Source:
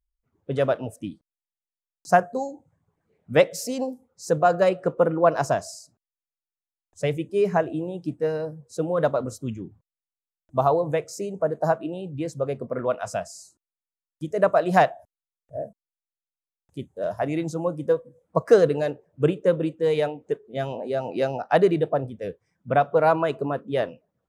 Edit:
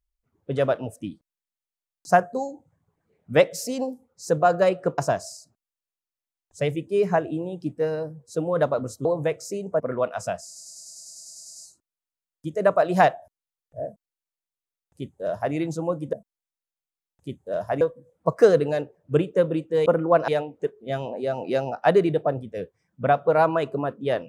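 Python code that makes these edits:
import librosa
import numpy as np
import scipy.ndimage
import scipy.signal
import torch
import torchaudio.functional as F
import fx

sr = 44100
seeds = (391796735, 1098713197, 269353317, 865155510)

y = fx.edit(x, sr, fx.move(start_s=4.98, length_s=0.42, to_s=19.95),
    fx.cut(start_s=9.47, length_s=1.26),
    fx.cut(start_s=11.48, length_s=1.19),
    fx.stutter(start_s=13.33, slice_s=0.1, count=12),
    fx.duplicate(start_s=15.63, length_s=1.68, to_s=17.9), tone=tone)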